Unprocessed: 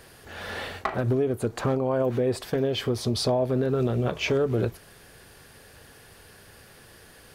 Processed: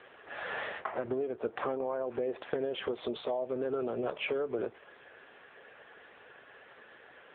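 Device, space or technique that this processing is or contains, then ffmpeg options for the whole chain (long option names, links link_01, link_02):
voicemail: -filter_complex "[0:a]asplit=3[link_01][link_02][link_03];[link_01]afade=type=out:start_time=2.9:duration=0.02[link_04];[link_02]bass=frequency=250:gain=-6,treble=frequency=4000:gain=12,afade=type=in:start_time=2.9:duration=0.02,afade=type=out:start_time=3.4:duration=0.02[link_05];[link_03]afade=type=in:start_time=3.4:duration=0.02[link_06];[link_04][link_05][link_06]amix=inputs=3:normalize=0,highpass=420,lowpass=2800,acompressor=threshold=-32dB:ratio=10,volume=3.5dB" -ar 8000 -c:a libopencore_amrnb -b:a 6700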